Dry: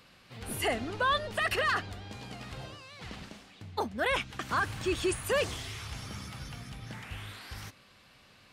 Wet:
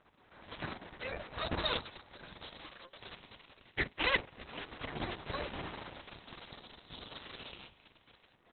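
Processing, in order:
far-end echo of a speakerphone 200 ms, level −13 dB
dynamic equaliser 3,400 Hz, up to +4 dB, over −54 dBFS, Q 6.1
noise that follows the level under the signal 32 dB
auto-filter high-pass saw down 0.24 Hz 920–4,600 Hz
full-wave rectification
convolution reverb, pre-delay 47 ms, DRR 15 dB
gate on every frequency bin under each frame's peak −15 dB weak
level +2 dB
Opus 6 kbit/s 48,000 Hz

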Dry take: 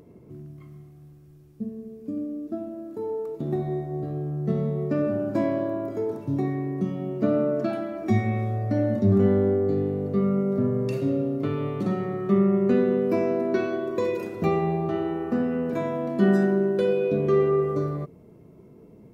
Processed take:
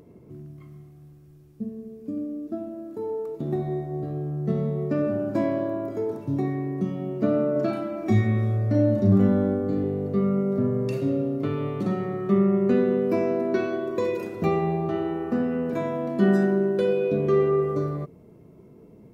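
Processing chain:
0:07.52–0:09.84: double-tracking delay 37 ms −4.5 dB

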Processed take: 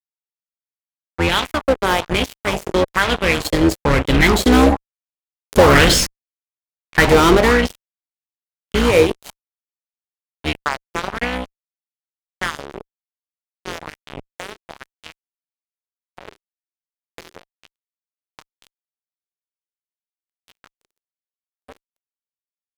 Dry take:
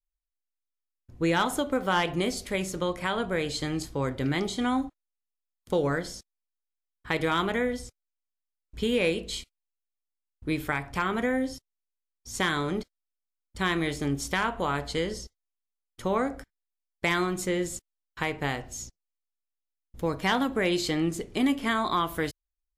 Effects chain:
sub-octave generator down 2 octaves, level 0 dB
source passing by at 0:05.79, 9 m/s, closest 4.1 metres
on a send at −21.5 dB: convolution reverb RT60 0.50 s, pre-delay 5 ms
on the sum: fuzz pedal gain 41 dB, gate −45 dBFS
auto-filter bell 1.1 Hz 370–3,300 Hz +9 dB
level +3 dB

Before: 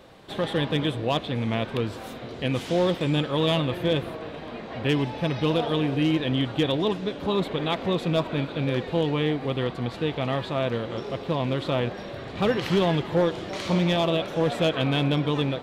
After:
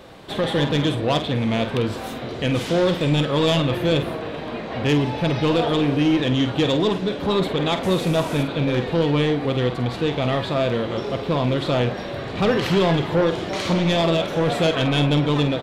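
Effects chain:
0:07.83–0:08.43: linear delta modulator 64 kbit/s, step −36 dBFS
soft clipping −19.5 dBFS, distortion −15 dB
double-tracking delay 48 ms −9.5 dB
level +6.5 dB

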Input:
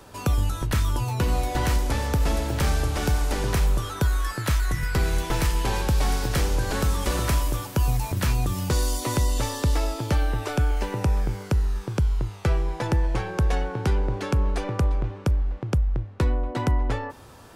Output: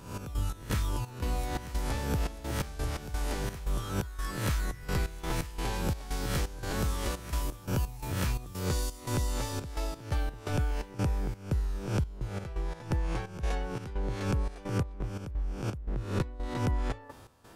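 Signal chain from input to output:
peak hold with a rise ahead of every peak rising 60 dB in 0.61 s
speech leveller
gate pattern "x.x.xx.xx.xxx." 86 BPM −12 dB
level −8.5 dB

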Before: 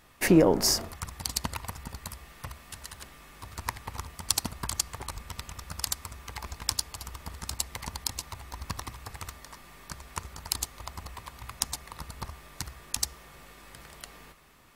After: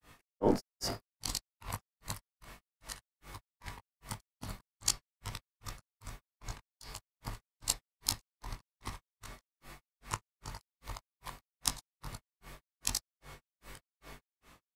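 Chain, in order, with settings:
every overlapping window played backwards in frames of 41 ms
hum removal 194.5 Hz, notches 28
granular cloud 217 ms, grains 2.5 per second, pitch spread up and down by 0 semitones
level +4.5 dB

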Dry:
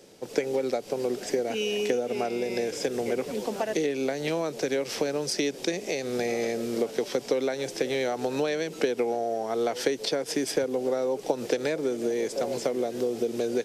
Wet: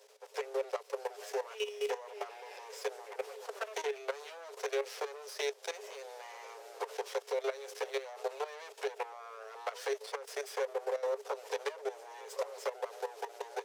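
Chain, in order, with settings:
lower of the sound and its delayed copy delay 9.5 ms
output level in coarse steps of 14 dB
Chebyshev high-pass with heavy ripple 400 Hz, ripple 3 dB
level −2 dB

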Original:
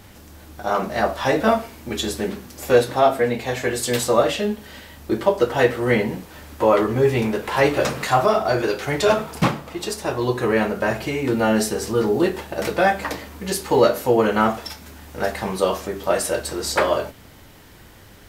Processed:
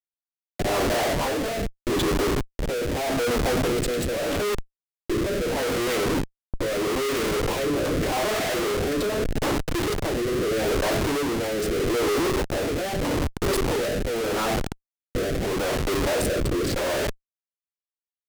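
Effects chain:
adaptive Wiener filter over 25 samples
Chebyshev high-pass filter 270 Hz, order 5
in parallel at −2 dB: downward compressor 10 to 1, threshold −30 dBFS, peak gain reduction 20 dB
on the sum: comparator with hysteresis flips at −33 dBFS
rotating-speaker cabinet horn 0.8 Hz
hard clipping −18.5 dBFS, distortion −28 dB

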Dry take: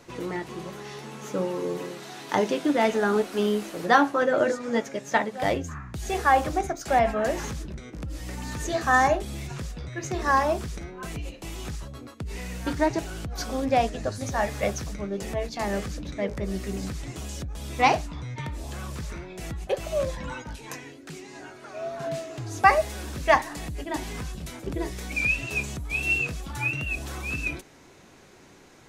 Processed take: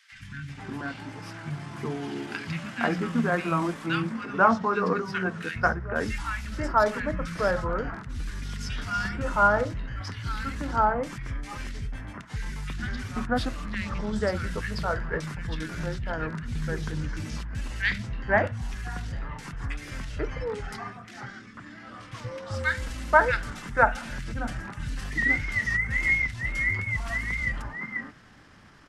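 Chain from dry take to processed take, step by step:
drawn EQ curve 260 Hz 0 dB, 430 Hz −8 dB, 710 Hz −8 dB, 2,100 Hz +5 dB, 3,100 Hz 0 dB, 5,200 Hz −6 dB
pitch shifter −4 semitones
three-band delay without the direct sound highs, lows, mids 120/490 ms, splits 180/1,800 Hz
level +2.5 dB

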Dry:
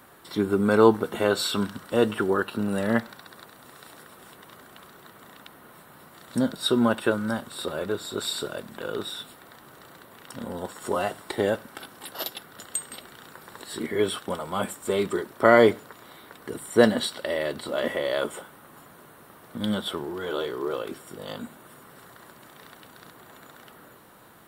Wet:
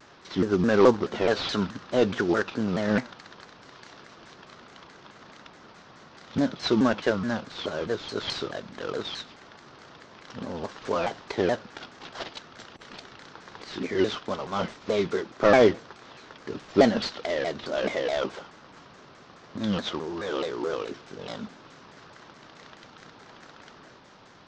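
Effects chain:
variable-slope delta modulation 32 kbit/s
pitch modulation by a square or saw wave saw down 4.7 Hz, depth 250 cents

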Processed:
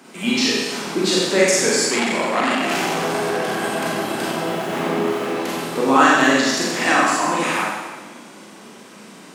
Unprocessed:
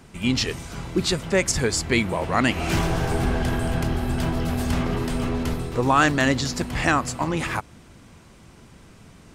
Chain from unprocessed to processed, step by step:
0:04.37–0:05.31: running median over 9 samples
high-pass filter 220 Hz 24 dB per octave
in parallel at +1 dB: downward compressor, threshold −32 dBFS, peak gain reduction 18 dB
on the sum: four-comb reverb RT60 1.3 s, combs from 30 ms, DRR −6 dB
0:01.89–0:03.64: saturating transformer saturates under 1,700 Hz
level −2.5 dB

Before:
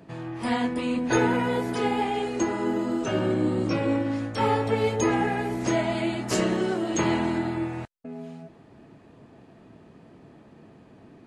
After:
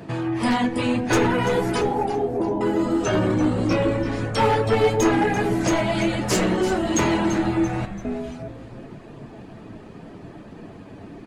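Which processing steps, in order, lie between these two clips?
wavefolder on the positive side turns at −19 dBFS
reverb reduction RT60 0.57 s
0:01.81–0:02.61: elliptic low-pass filter 930 Hz
in parallel at +2.5 dB: downward compressor, threshold −35 dBFS, peak gain reduction 15.5 dB
on the sum: soft clipping −15.5 dBFS, distortion −20 dB
flanger 0.23 Hz, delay 8.7 ms, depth 1.8 ms, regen −43%
echo with shifted repeats 338 ms, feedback 44%, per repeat −130 Hz, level −12 dB
on a send at −14 dB: convolution reverb RT60 1.1 s, pre-delay 7 ms
on the sum: level +8 dB

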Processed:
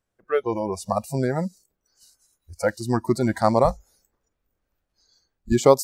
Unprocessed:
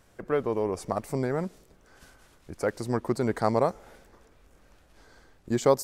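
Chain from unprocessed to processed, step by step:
0:03.64–0:05.53: sub-octave generator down 2 octaves, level −1 dB
noise reduction from a noise print of the clip's start 27 dB
level +6.5 dB

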